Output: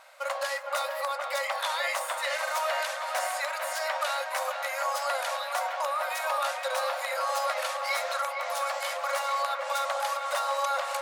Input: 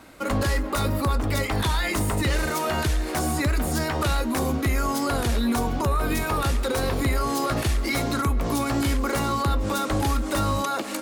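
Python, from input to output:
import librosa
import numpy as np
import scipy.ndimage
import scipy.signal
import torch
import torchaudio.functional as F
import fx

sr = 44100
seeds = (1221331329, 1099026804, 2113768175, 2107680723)

y = fx.brickwall_highpass(x, sr, low_hz=510.0)
y = fx.high_shelf(y, sr, hz=10000.0, db=-7.0)
y = fx.echo_wet_lowpass(y, sr, ms=460, feedback_pct=73, hz=2800.0, wet_db=-5.5)
y = F.gain(torch.from_numpy(y), -2.5).numpy()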